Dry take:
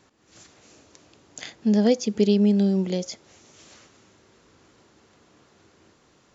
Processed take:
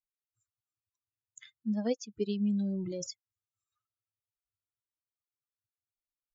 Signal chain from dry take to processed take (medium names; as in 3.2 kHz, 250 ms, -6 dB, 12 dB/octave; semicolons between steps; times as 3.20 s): expander on every frequency bin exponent 3; 2.34–3.11 s: decay stretcher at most 21 dB/s; trim -8.5 dB